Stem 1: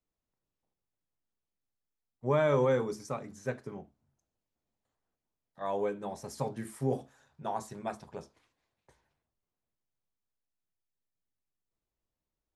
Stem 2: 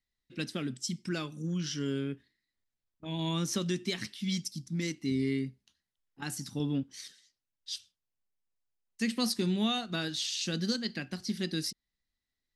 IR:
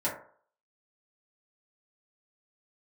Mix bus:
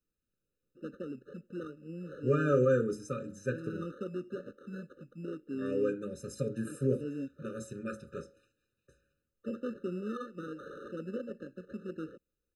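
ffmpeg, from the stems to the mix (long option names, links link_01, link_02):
-filter_complex "[0:a]bandreject=frequency=4600:width=5.3,volume=1dB,asplit=2[link_01][link_02];[link_02]volume=-17.5dB[link_03];[1:a]deesser=0.9,acrusher=samples=18:mix=1:aa=0.000001,bandpass=frequency=590:width_type=q:width=1.3:csg=0,adelay=450,volume=1.5dB[link_04];[2:a]atrim=start_sample=2205[link_05];[link_03][link_05]afir=irnorm=-1:irlink=0[link_06];[link_01][link_04][link_06]amix=inputs=3:normalize=0,afftfilt=real='re*eq(mod(floor(b*sr/1024/600),2),0)':imag='im*eq(mod(floor(b*sr/1024/600),2),0)':win_size=1024:overlap=0.75"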